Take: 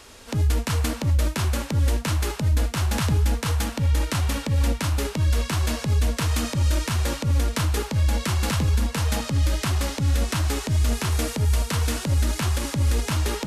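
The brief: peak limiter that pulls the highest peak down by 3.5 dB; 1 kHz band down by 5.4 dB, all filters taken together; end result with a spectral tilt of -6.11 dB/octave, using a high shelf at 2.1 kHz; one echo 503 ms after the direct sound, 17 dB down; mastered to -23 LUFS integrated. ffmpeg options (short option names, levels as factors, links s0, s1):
-af "equalizer=f=1000:t=o:g=-5,highshelf=f=2100:g=-7.5,alimiter=limit=0.141:level=0:latency=1,aecho=1:1:503:0.141,volume=1.41"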